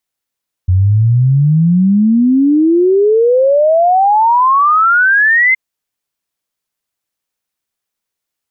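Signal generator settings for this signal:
exponential sine sweep 89 Hz → 2,100 Hz 4.87 s −6.5 dBFS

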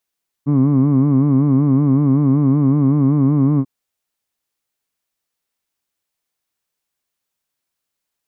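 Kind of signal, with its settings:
vowel from formants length 3.19 s, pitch 138 Hz, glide +0.5 semitones, vibrato depth 1.1 semitones, F1 250 Hz, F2 1,100 Hz, F3 2,200 Hz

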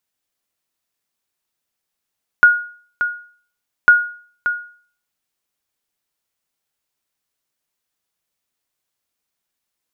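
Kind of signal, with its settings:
ping with an echo 1,440 Hz, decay 0.47 s, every 1.45 s, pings 2, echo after 0.58 s, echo −10 dB −2 dBFS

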